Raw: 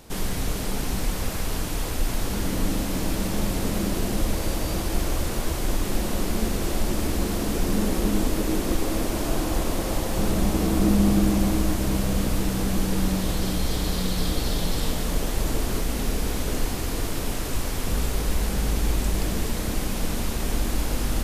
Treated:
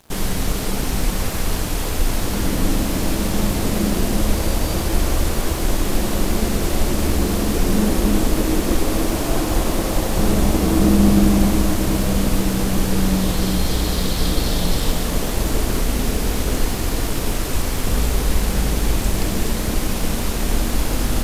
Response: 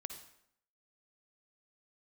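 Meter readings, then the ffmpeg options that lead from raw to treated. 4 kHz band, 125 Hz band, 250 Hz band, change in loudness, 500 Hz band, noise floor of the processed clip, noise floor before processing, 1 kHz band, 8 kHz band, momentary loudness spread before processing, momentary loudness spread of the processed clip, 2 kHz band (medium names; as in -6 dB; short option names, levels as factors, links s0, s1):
+5.5 dB, +5.5 dB, +5.5 dB, +5.5 dB, +5.5 dB, -23 dBFS, -28 dBFS, +5.5 dB, +5.5 dB, 5 LU, 5 LU, +5.5 dB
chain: -filter_complex "[0:a]asplit=2[s0][s1];[1:a]atrim=start_sample=2205[s2];[s1][s2]afir=irnorm=-1:irlink=0,volume=2.24[s3];[s0][s3]amix=inputs=2:normalize=0,aeval=exprs='sgn(val(0))*max(abs(val(0))-0.0112,0)':c=same,volume=0.794"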